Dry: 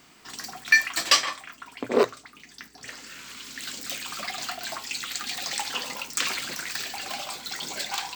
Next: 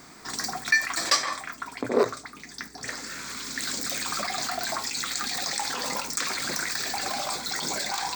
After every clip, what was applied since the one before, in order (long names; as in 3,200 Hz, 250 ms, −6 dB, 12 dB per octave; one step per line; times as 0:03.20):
parametric band 13,000 Hz −10 dB 0.3 octaves
in parallel at +1 dB: compressor whose output falls as the input rises −36 dBFS, ratio −1
on the sum: parametric band 2,900 Hz −14.5 dB 0.4 octaves
level −1.5 dB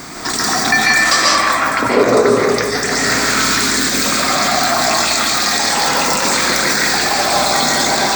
in parallel at −2.5 dB: compressor whose output falls as the input rises −36 dBFS, ratio −0.5
on the sum: convolution reverb RT60 2.0 s, pre-delay 100 ms, DRR −4.5 dB
boost into a limiter +10 dB
level −1 dB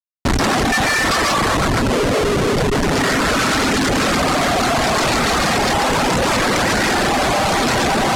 comparator with hysteresis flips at −13.5 dBFS
reverb reduction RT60 0.59 s
low-pass filter 9,400 Hz 12 dB per octave